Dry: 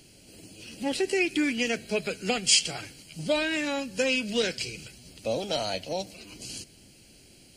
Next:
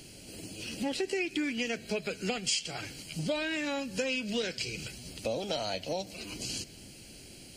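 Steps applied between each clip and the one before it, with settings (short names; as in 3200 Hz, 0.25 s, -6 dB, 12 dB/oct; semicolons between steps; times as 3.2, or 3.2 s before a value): dynamic EQ 9800 Hz, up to -6 dB, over -55 dBFS, Q 2.4; compressor 3:1, threshold -37 dBFS, peak gain reduction 15 dB; gain +4.5 dB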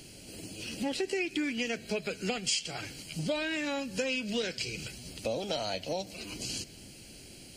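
nothing audible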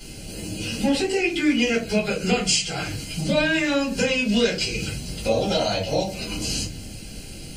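reverb RT60 0.30 s, pre-delay 4 ms, DRR -8 dB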